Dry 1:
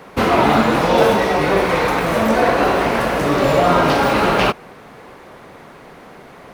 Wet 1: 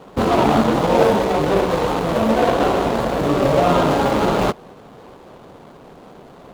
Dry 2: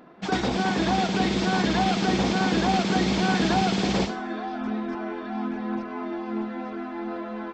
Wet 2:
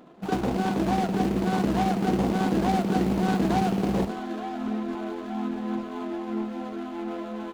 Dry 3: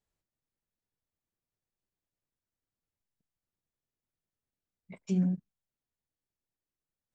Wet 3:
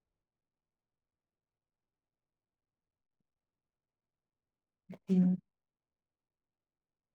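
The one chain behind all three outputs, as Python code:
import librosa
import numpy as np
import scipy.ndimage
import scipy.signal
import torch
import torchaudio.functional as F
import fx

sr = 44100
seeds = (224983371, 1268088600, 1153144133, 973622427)

y = scipy.ndimage.median_filter(x, 25, mode='constant')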